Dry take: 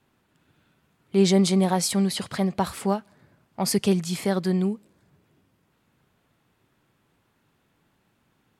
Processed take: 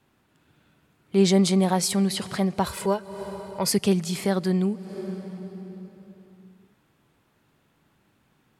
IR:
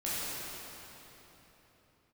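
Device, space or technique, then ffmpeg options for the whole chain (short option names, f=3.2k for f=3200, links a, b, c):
ducked reverb: -filter_complex "[0:a]asplit=3[a][b][c];[1:a]atrim=start_sample=2205[d];[b][d]afir=irnorm=-1:irlink=0[e];[c]apad=whole_len=379189[f];[e][f]sidechaincompress=threshold=-41dB:ratio=8:attack=30:release=196,volume=-12.5dB[g];[a][g]amix=inputs=2:normalize=0,asettb=1/sr,asplit=3[h][i][j];[h]atrim=end=2.654[k];[i]atrim=start=2.65:end=3.71,asetpts=PTS-STARTPTS,afade=t=in:d=0.004:c=qsin,afade=t=out:st=1.056:d=0.004:c=qsin,aecho=1:1:2:0.69,atrim=end_sample=46746[l];[j]atrim=start=3.706[m];[k][l]acrossfade=d=0.004:c1=hsin:c2=qsin[n];[n][m]acrossfade=d=0.004:c1=qsin:c2=hsin"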